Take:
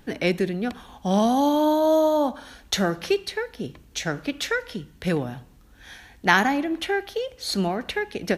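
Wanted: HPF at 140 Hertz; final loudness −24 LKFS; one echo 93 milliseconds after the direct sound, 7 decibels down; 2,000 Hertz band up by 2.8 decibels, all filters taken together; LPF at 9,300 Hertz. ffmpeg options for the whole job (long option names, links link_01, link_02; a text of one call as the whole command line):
ffmpeg -i in.wav -af "highpass=140,lowpass=9300,equalizer=frequency=2000:width_type=o:gain=3.5,aecho=1:1:93:0.447,volume=-1dB" out.wav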